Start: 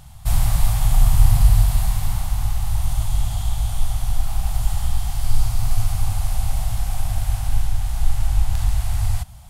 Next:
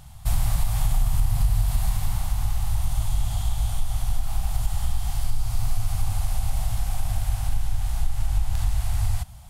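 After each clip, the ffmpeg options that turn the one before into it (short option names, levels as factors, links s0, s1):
-af "acompressor=threshold=0.2:ratio=6,volume=0.794"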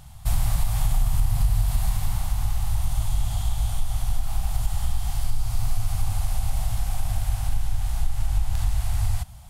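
-af anull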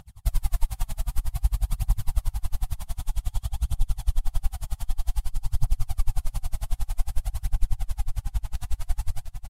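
-af "aphaser=in_gain=1:out_gain=1:delay=4.9:decay=0.56:speed=0.53:type=triangular,aecho=1:1:704:0.422,aeval=exprs='val(0)*pow(10,-34*(0.5-0.5*cos(2*PI*11*n/s))/20)':c=same,volume=0.794"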